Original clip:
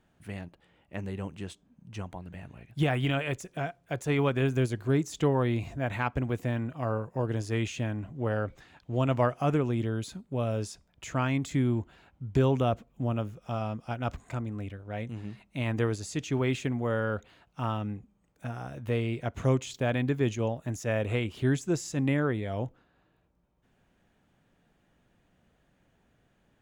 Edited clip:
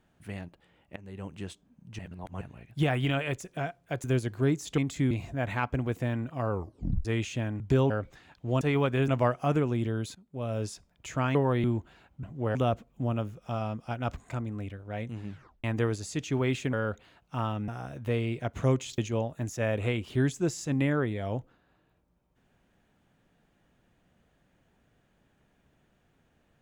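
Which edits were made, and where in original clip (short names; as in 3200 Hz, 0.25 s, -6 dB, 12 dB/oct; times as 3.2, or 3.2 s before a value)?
0.96–1.39 fade in, from -19.5 dB
1.99–2.41 reverse
4.04–4.51 move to 9.06
5.25–5.54 swap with 11.33–11.66
6.93 tape stop 0.55 s
8.03–8.35 swap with 12.25–12.55
10.13–10.62 fade in linear, from -19.5 dB
15.28 tape stop 0.36 s
16.73–16.98 cut
17.93–18.49 cut
19.79–20.25 cut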